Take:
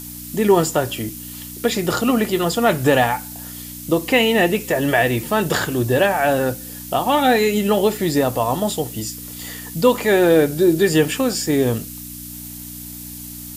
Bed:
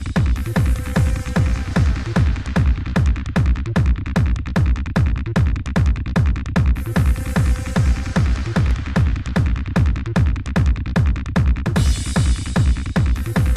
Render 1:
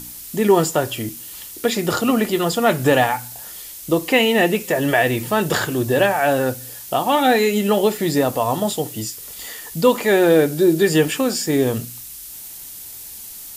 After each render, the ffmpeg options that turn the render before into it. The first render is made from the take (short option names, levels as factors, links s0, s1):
-af "bandreject=f=60:t=h:w=4,bandreject=f=120:t=h:w=4,bandreject=f=180:t=h:w=4,bandreject=f=240:t=h:w=4,bandreject=f=300:t=h:w=4"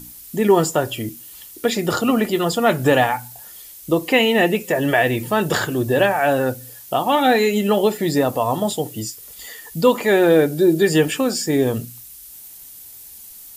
-af "afftdn=nr=7:nf=-36"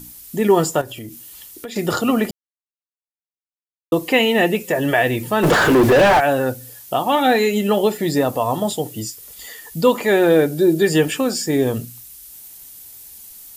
-filter_complex "[0:a]asettb=1/sr,asplit=3[s0][s1][s2];[s0]atrim=end=0.814[s3];[s1]atrim=start=0.81:end=1.76,asetpts=PTS-STARTPTS,afade=t=in:d=0.004:c=qsin,afade=t=out:st=0.946:d=0.004:c=qsin,acompressor=threshold=0.0316:ratio=4:attack=3.2:release=140:knee=1:detection=peak[s4];[s2]atrim=start=1.756[s5];[s3][s4]acrossfade=d=0.004:c1=hsin:c2=qsin[s6];[s6][s5]acrossfade=d=0.004:c1=qsin:c2=hsin,asplit=3[s7][s8][s9];[s7]afade=t=out:st=5.42:d=0.02[s10];[s8]asplit=2[s11][s12];[s12]highpass=f=720:p=1,volume=70.8,asoftclip=type=tanh:threshold=0.596[s13];[s11][s13]amix=inputs=2:normalize=0,lowpass=f=1300:p=1,volume=0.501,afade=t=in:st=5.42:d=0.02,afade=t=out:st=6.19:d=0.02[s14];[s9]afade=t=in:st=6.19:d=0.02[s15];[s10][s14][s15]amix=inputs=3:normalize=0,asplit=3[s16][s17][s18];[s16]atrim=end=2.31,asetpts=PTS-STARTPTS,afade=t=out:st=2.306:d=0.004:c=hsin[s19];[s17]atrim=start=2.31:end=3.92,asetpts=PTS-STARTPTS,volume=0[s20];[s18]atrim=start=3.92,asetpts=PTS-STARTPTS,afade=t=in:d=0.004:c=hsin[s21];[s19][s20][s21]concat=n=3:v=0:a=1"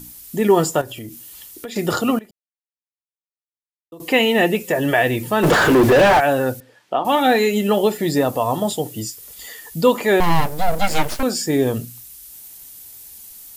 -filter_complex "[0:a]asettb=1/sr,asplit=3[s0][s1][s2];[s0]atrim=end=6.604[s3];[s1]atrim=start=6.6:end=7.05,asetpts=PTS-STARTPTS,afade=t=in:d=0.004:c=qsin,afade=t=out:st=0.446:d=0.004:c=qsin,highpass=250,lowpass=2400[s4];[s2]atrim=start=7.046[s5];[s3][s4]acrossfade=d=0.004:c1=hsin:c2=qsin[s6];[s6][s5]acrossfade=d=0.004:c1=qsin:c2=hsin,asettb=1/sr,asplit=3[s7][s8][s9];[s7]atrim=end=10.204[s10];[s8]atrim=start=10.2:end=11.23,asetpts=PTS-STARTPTS,afade=t=in:d=0.004:c=qsin,afade=t=out:st=1.026:d=0.004:c=qsin,aeval=exprs='abs(val(0))':c=same[s11];[s9]atrim=start=11.226[s12];[s10][s11]acrossfade=d=0.004:c1=hsin:c2=qsin[s13];[s13][s12]acrossfade=d=0.004:c1=qsin:c2=hsin,asplit=3[s14][s15][s16];[s14]atrim=end=2.19,asetpts=PTS-STARTPTS,afade=t=out:st=1.91:d=0.28:c=log:silence=0.0794328[s17];[s15]atrim=start=2.19:end=4,asetpts=PTS-STARTPTS,volume=0.0794[s18];[s16]atrim=start=4,asetpts=PTS-STARTPTS,afade=t=in:d=0.28:c=log:silence=0.0794328[s19];[s17][s18][s19]concat=n=3:v=0:a=1"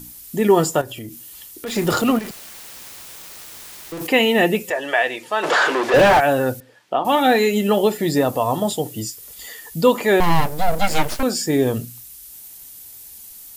-filter_complex "[0:a]asettb=1/sr,asplit=3[s0][s1][s2];[s0]atrim=end=1.664[s3];[s1]atrim=start=1.66:end=4.07,asetpts=PTS-STARTPTS,afade=t=in:d=0.004:c=qsin,afade=t=out:st=2.406:d=0.004:c=qsin,aeval=exprs='val(0)+0.5*0.0473*sgn(val(0))':c=same[s4];[s2]atrim=start=4.066[s5];[s3][s4]acrossfade=d=0.004:c1=hsin:c2=qsin[s6];[s6][s5]acrossfade=d=0.004:c1=qsin:c2=hsin,asettb=1/sr,asplit=3[s7][s8][s9];[s7]atrim=end=4.704[s10];[s8]atrim=start=4.7:end=5.94,asetpts=PTS-STARTPTS,afade=t=in:d=0.004:c=qsin,afade=t=out:st=1.236:d=0.004:c=qsin,highpass=600,lowpass=6600[s11];[s9]atrim=start=5.936[s12];[s10][s11]acrossfade=d=0.004:c1=hsin:c2=qsin[s13];[s13][s12]acrossfade=d=0.004:c1=qsin:c2=hsin"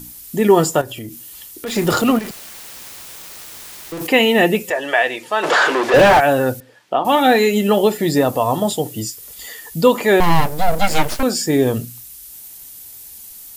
-af "volume=1.33,alimiter=limit=0.891:level=0:latency=1"